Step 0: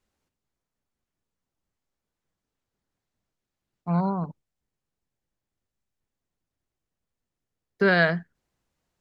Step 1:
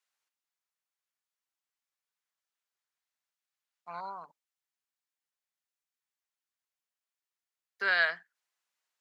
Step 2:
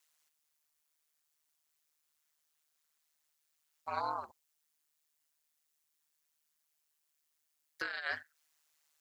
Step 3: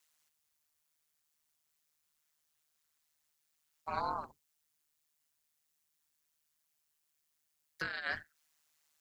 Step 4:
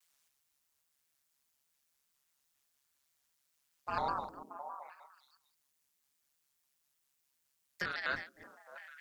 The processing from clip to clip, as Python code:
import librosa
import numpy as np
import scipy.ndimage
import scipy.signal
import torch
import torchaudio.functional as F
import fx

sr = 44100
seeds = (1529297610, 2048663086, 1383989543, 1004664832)

y1 = scipy.signal.sosfilt(scipy.signal.butter(2, 1200.0, 'highpass', fs=sr, output='sos'), x)
y1 = y1 * 10.0 ** (-2.5 / 20.0)
y2 = fx.high_shelf(y1, sr, hz=4800.0, db=10.5)
y2 = fx.over_compress(y2, sr, threshold_db=-35.0, ratio=-1.0)
y2 = y2 * np.sin(2.0 * np.pi * 76.0 * np.arange(len(y2)) / sr)
y2 = y2 * 10.0 ** (1.0 / 20.0)
y3 = fx.octave_divider(y2, sr, octaves=1, level_db=3.0)
y4 = fx.reverse_delay(y3, sr, ms=143, wet_db=-11.0)
y4 = fx.echo_stepped(y4, sr, ms=314, hz=300.0, octaves=1.4, feedback_pct=70, wet_db=-6)
y4 = fx.vibrato_shape(y4, sr, shape='square', rate_hz=4.9, depth_cents=160.0)
y4 = y4 * 10.0 ** (1.0 / 20.0)